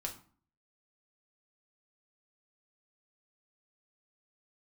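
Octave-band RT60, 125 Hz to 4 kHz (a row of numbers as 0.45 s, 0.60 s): 0.60 s, 0.55 s, 0.45 s, 0.45 s, 0.35 s, 0.30 s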